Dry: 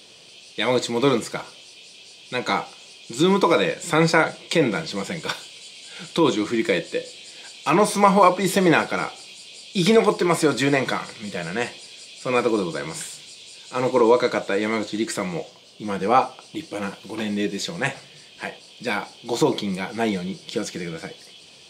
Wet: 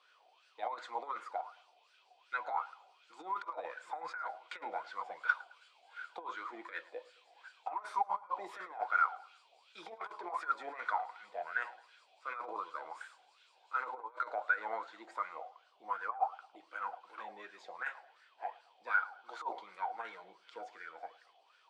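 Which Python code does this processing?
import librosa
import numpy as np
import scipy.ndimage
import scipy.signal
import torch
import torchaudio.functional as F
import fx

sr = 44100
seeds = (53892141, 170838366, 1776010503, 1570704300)

p1 = scipy.signal.sosfilt(scipy.signal.butter(2, 430.0, 'highpass', fs=sr, output='sos'), x)
p2 = fx.over_compress(p1, sr, threshold_db=-24.0, ratio=-0.5)
p3 = fx.wah_lfo(p2, sr, hz=2.7, low_hz=730.0, high_hz=1500.0, q=13.0)
p4 = p3 + fx.echo_feedback(p3, sr, ms=108, feedback_pct=39, wet_db=-22.0, dry=0)
y = p4 * librosa.db_to_amplitude(2.0)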